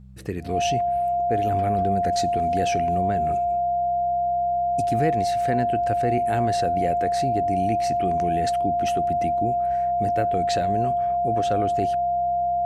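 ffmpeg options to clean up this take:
-af "bandreject=f=64.3:t=h:w=4,bandreject=f=128.6:t=h:w=4,bandreject=f=192.9:t=h:w=4,bandreject=f=700:w=30"

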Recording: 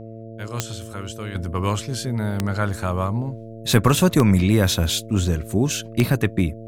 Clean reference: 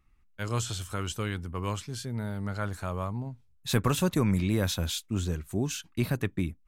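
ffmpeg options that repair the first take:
-af "adeclick=t=4,bandreject=f=112.3:t=h:w=4,bandreject=f=224.6:t=h:w=4,bandreject=f=336.9:t=h:w=4,bandreject=f=449.2:t=h:w=4,bandreject=f=561.5:t=h:w=4,bandreject=f=673.8:t=h:w=4,asetnsamples=n=441:p=0,asendcmd='1.35 volume volume -9.5dB',volume=0dB"

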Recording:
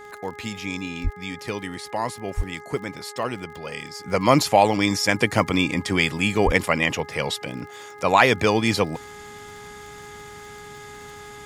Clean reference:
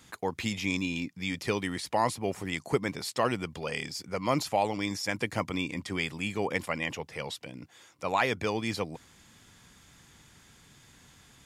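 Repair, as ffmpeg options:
-filter_complex "[0:a]adeclick=t=4,bandreject=f=415.1:t=h:w=4,bandreject=f=830.2:t=h:w=4,bandreject=f=1.2453k:t=h:w=4,bandreject=f=1.6604k:t=h:w=4,bandreject=f=2.0755k:t=h:w=4,asplit=3[a][b][c];[a]afade=t=out:st=1.03:d=0.02[d];[b]highpass=f=140:w=0.5412,highpass=f=140:w=1.3066,afade=t=in:st=1.03:d=0.02,afade=t=out:st=1.15:d=0.02[e];[c]afade=t=in:st=1.15:d=0.02[f];[d][e][f]amix=inputs=3:normalize=0,asplit=3[g][h][i];[g]afade=t=out:st=2.36:d=0.02[j];[h]highpass=f=140:w=0.5412,highpass=f=140:w=1.3066,afade=t=in:st=2.36:d=0.02,afade=t=out:st=2.48:d=0.02[k];[i]afade=t=in:st=2.48:d=0.02[l];[j][k][l]amix=inputs=3:normalize=0,asplit=3[m][n][o];[m]afade=t=out:st=6.45:d=0.02[p];[n]highpass=f=140:w=0.5412,highpass=f=140:w=1.3066,afade=t=in:st=6.45:d=0.02,afade=t=out:st=6.57:d=0.02[q];[o]afade=t=in:st=6.57:d=0.02[r];[p][q][r]amix=inputs=3:normalize=0,asetnsamples=n=441:p=0,asendcmd='4.05 volume volume -11dB',volume=0dB"

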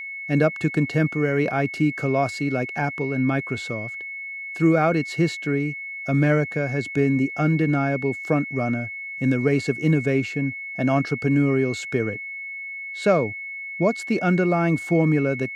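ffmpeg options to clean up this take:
-af "bandreject=f=2.2k:w=30"

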